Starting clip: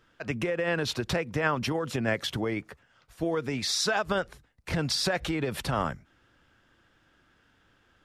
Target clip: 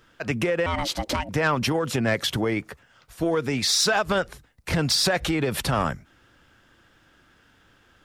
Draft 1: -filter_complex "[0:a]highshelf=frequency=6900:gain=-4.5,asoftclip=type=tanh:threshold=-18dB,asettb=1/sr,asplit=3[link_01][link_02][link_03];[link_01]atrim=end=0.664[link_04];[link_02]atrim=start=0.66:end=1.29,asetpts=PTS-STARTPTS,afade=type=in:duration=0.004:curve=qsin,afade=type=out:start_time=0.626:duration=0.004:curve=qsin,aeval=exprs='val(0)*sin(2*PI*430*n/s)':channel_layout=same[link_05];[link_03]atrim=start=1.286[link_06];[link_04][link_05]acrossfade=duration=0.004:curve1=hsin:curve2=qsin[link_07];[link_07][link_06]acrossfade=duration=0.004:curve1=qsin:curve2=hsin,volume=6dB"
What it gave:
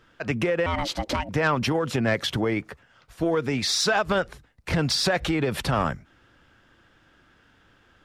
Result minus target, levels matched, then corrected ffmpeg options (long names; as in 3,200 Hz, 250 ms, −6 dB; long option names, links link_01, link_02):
8,000 Hz band −3.5 dB
-filter_complex "[0:a]highshelf=frequency=6900:gain=5.5,asoftclip=type=tanh:threshold=-18dB,asettb=1/sr,asplit=3[link_01][link_02][link_03];[link_01]atrim=end=0.664[link_04];[link_02]atrim=start=0.66:end=1.29,asetpts=PTS-STARTPTS,afade=type=in:duration=0.004:curve=qsin,afade=type=out:start_time=0.626:duration=0.004:curve=qsin,aeval=exprs='val(0)*sin(2*PI*430*n/s)':channel_layout=same[link_05];[link_03]atrim=start=1.286[link_06];[link_04][link_05]acrossfade=duration=0.004:curve1=hsin:curve2=qsin[link_07];[link_07][link_06]acrossfade=duration=0.004:curve1=qsin:curve2=hsin,volume=6dB"